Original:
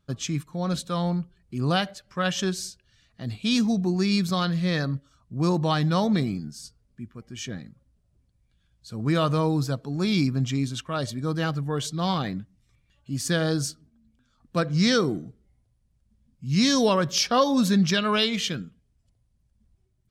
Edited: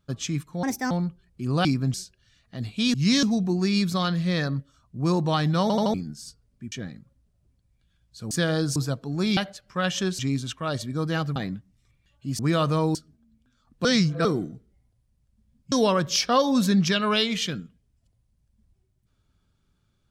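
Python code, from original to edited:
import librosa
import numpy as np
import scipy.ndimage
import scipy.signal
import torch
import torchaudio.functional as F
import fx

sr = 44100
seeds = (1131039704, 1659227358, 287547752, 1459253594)

y = fx.edit(x, sr, fx.speed_span(start_s=0.63, length_s=0.41, speed=1.47),
    fx.swap(start_s=1.78, length_s=0.82, other_s=10.18, other_length_s=0.29),
    fx.stutter_over(start_s=5.99, slice_s=0.08, count=4),
    fx.cut(start_s=7.09, length_s=0.33),
    fx.swap(start_s=9.01, length_s=0.56, other_s=13.23, other_length_s=0.45),
    fx.cut(start_s=11.64, length_s=0.56),
    fx.reverse_span(start_s=14.58, length_s=0.4),
    fx.move(start_s=16.45, length_s=0.29, to_s=3.6), tone=tone)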